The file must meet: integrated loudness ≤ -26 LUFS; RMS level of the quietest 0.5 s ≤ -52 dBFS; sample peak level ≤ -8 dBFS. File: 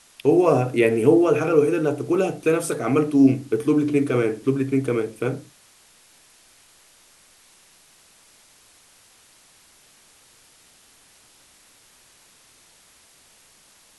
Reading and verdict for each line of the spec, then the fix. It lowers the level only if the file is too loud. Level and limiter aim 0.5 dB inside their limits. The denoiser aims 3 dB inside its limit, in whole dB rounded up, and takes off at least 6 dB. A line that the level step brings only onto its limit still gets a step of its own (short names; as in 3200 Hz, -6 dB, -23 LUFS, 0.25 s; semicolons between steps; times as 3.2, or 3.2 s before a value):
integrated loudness -20.5 LUFS: fail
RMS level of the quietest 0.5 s -55 dBFS: OK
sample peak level -4.0 dBFS: fail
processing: gain -6 dB